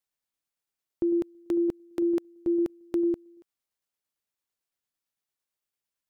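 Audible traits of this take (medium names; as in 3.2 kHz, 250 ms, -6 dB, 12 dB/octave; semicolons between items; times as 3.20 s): tremolo saw down 8.9 Hz, depth 30%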